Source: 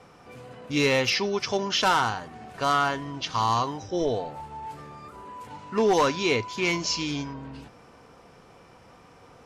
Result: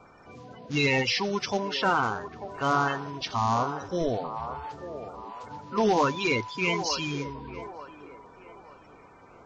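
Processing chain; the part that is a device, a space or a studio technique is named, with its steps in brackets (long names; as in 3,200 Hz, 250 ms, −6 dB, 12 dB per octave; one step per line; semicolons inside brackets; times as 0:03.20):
clip after many re-uploads (low-pass filter 6,300 Hz 24 dB per octave; spectral magnitudes quantised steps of 30 dB)
delay with a band-pass on its return 893 ms, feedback 34%, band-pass 740 Hz, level −9.5 dB
0:01.59–0:02.03: low-pass filter 3,000 Hz 6 dB per octave
level −1 dB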